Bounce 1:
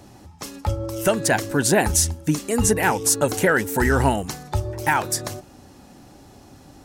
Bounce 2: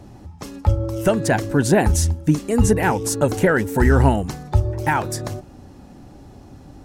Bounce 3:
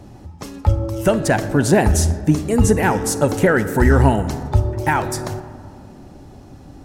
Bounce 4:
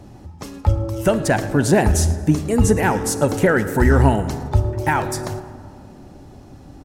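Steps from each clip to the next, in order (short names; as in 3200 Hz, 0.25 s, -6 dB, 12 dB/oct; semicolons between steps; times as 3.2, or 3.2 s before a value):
tilt -2 dB/oct
reverb RT60 2.4 s, pre-delay 5 ms, DRR 12 dB; gain +1.5 dB
feedback echo 0.11 s, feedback 37%, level -20 dB; gain -1 dB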